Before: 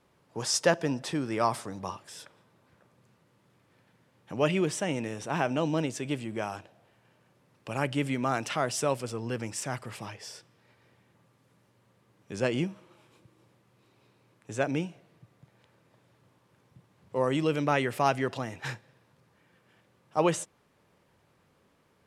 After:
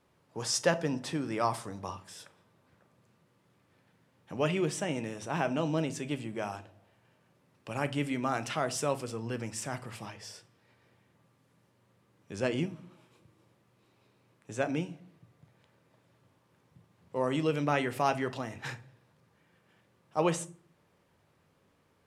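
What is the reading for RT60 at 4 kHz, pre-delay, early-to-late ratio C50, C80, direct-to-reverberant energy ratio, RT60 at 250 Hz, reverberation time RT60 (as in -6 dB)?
0.25 s, 11 ms, 19.0 dB, 23.5 dB, 11.0 dB, 0.70 s, 0.45 s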